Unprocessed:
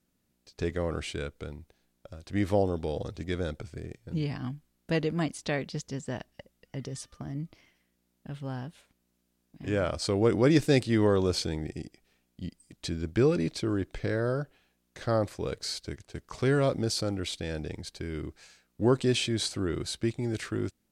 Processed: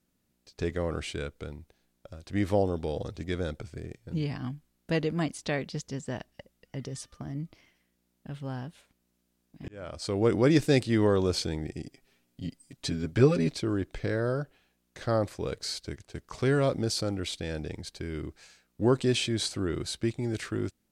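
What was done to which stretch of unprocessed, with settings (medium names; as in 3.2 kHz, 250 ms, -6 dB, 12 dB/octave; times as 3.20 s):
9.68–10.28 s: fade in
11.86–13.54 s: comb 7.4 ms, depth 84%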